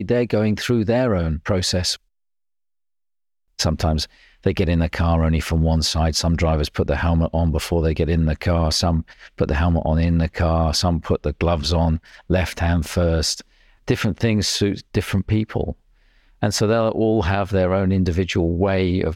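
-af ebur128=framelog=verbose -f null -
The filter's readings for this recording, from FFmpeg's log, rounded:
Integrated loudness:
  I:         -20.4 LUFS
  Threshold: -30.6 LUFS
Loudness range:
  LRA:         3.5 LU
  Threshold: -41.1 LUFS
  LRA low:   -23.4 LUFS
  LRA high:  -19.9 LUFS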